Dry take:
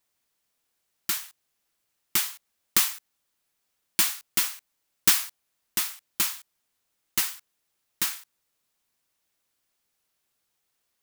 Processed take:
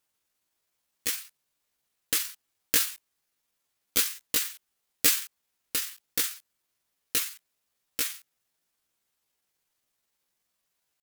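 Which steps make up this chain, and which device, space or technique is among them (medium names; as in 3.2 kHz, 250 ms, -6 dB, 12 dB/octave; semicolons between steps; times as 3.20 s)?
chipmunk voice (pitch shift +6 st)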